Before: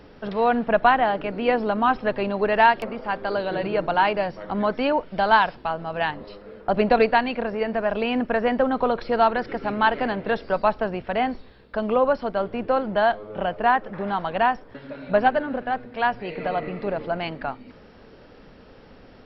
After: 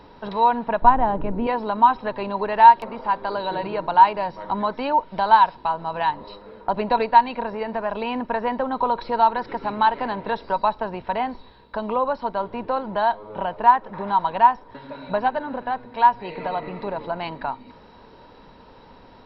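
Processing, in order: 0.82–1.47 tilt -4.5 dB/oct; in parallel at +2 dB: compressor, threshold -26 dBFS, peak gain reduction 19 dB; on the sum: small resonant body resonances 950/3900 Hz, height 17 dB, ringing for 35 ms; gain -8.5 dB

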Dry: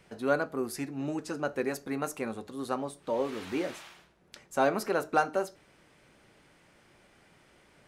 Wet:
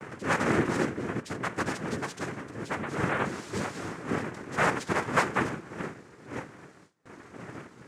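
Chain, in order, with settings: wind noise 460 Hz -35 dBFS; noise vocoder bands 3; gate with hold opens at -43 dBFS

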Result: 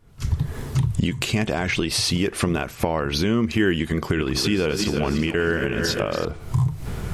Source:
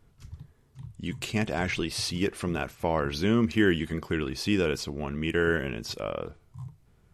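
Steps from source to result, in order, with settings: 4–6.25 regenerating reverse delay 0.169 s, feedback 64%, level -10 dB; recorder AGC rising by 74 dB/s; gain +2.5 dB

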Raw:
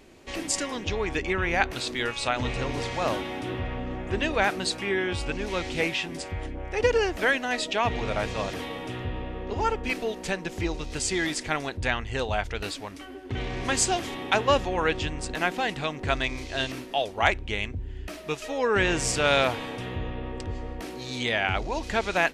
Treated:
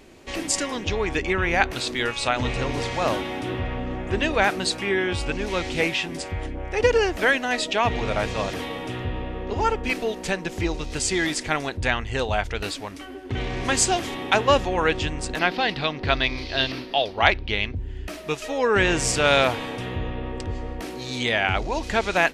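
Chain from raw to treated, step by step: 15.39–17.75 resonant high shelf 5900 Hz -9 dB, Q 3; gain +3.5 dB

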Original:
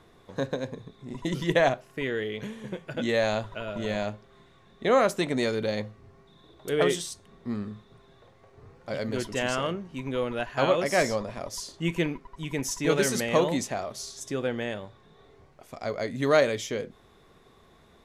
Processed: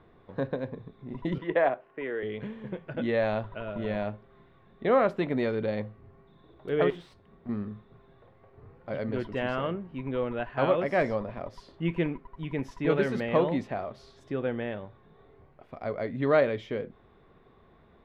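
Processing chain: 1.38–2.23 three-band isolator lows -17 dB, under 280 Hz, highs -16 dB, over 2900 Hz; 6.9–7.49 tube stage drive 36 dB, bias 0.45; air absorption 430 m

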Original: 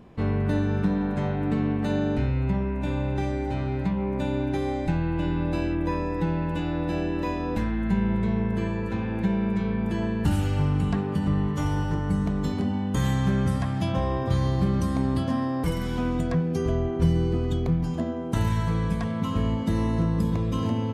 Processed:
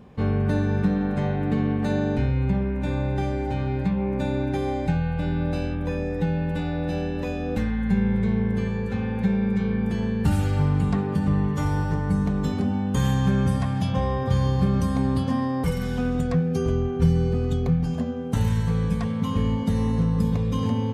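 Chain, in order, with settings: notch comb 330 Hz; gain +2.5 dB

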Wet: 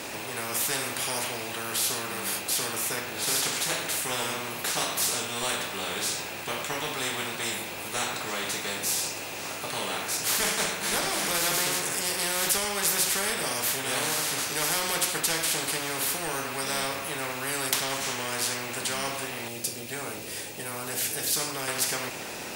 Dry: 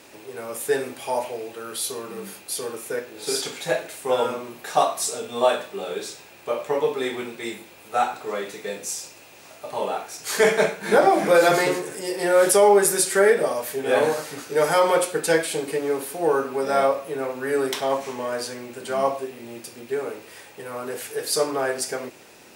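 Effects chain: 19.48–21.68 bell 1200 Hz -11 dB 2.5 oct; spectral compressor 4:1

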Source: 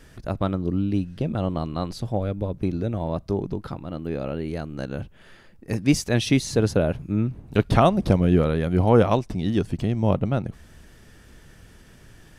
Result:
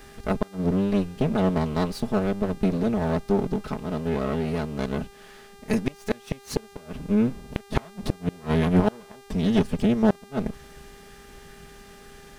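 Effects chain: minimum comb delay 4.7 ms; flipped gate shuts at -11 dBFS, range -32 dB; buzz 400 Hz, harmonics 38, -53 dBFS -5 dB/oct; gain +2.5 dB

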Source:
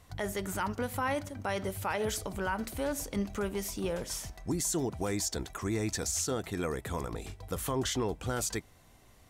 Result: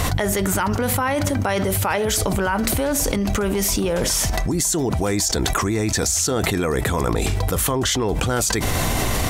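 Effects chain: fast leveller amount 100%; gain +8 dB

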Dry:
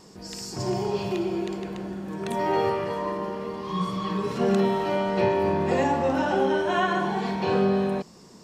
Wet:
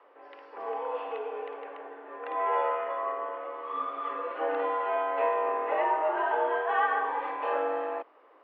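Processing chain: three-band isolator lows -14 dB, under 490 Hz, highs -15 dB, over 2100 Hz; mistuned SSB +87 Hz 250–3100 Hz

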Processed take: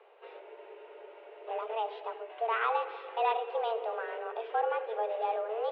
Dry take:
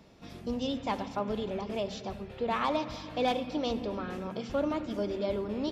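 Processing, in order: mistuned SSB +220 Hz 190–2800 Hz; spectral freeze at 0.41, 1.07 s

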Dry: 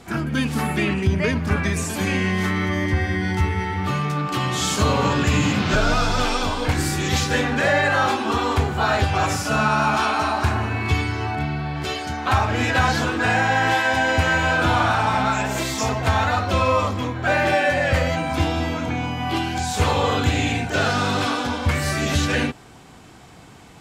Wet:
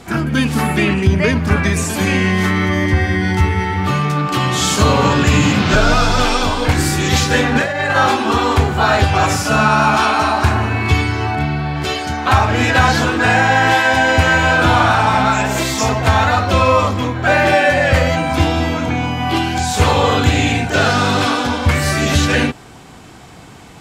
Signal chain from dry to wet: 7.55–7.96 negative-ratio compressor -22 dBFS, ratio -0.5; gain +6.5 dB

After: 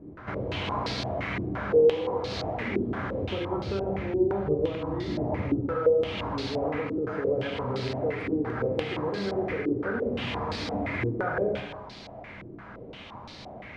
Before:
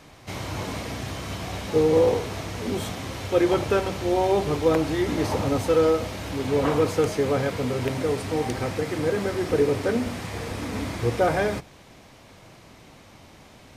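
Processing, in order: 3.22–5.61 low shelf 330 Hz +11 dB; compressor 6:1, threshold -32 dBFS, peak gain reduction 19.5 dB; reverb, pre-delay 3 ms, DRR 0.5 dB; stepped low-pass 5.8 Hz 340–4400 Hz

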